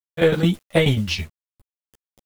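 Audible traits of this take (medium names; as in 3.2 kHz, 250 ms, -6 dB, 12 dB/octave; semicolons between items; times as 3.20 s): a quantiser's noise floor 8-bit, dither none; tremolo saw down 9.3 Hz, depth 75%; a shimmering, thickened sound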